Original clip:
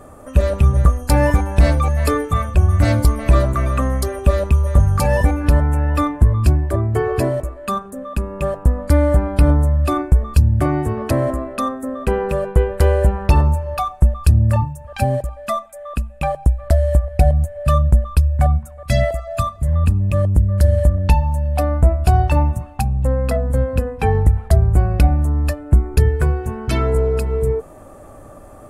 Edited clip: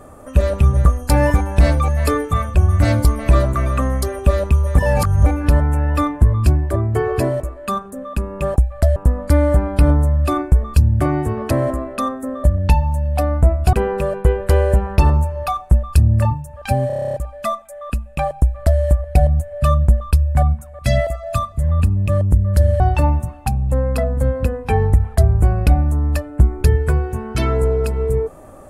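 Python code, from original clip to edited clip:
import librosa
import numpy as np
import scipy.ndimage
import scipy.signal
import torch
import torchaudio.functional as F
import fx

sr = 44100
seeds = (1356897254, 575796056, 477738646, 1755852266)

y = fx.edit(x, sr, fx.reverse_span(start_s=4.77, length_s=0.49),
    fx.stutter(start_s=15.18, slice_s=0.03, count=10),
    fx.duplicate(start_s=16.44, length_s=0.4, to_s=8.56),
    fx.move(start_s=20.84, length_s=1.29, to_s=12.04), tone=tone)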